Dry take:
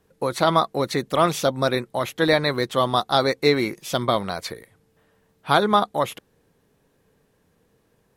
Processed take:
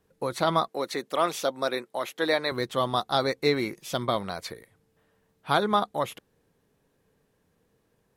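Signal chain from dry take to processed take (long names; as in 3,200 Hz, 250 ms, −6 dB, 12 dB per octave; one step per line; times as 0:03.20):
0:00.68–0:02.52: high-pass filter 310 Hz 12 dB per octave
level −5.5 dB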